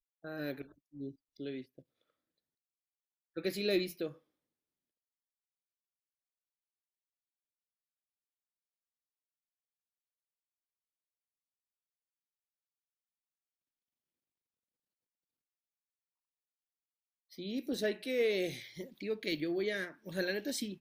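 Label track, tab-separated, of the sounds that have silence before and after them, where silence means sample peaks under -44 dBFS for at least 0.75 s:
3.370000	4.120000	sound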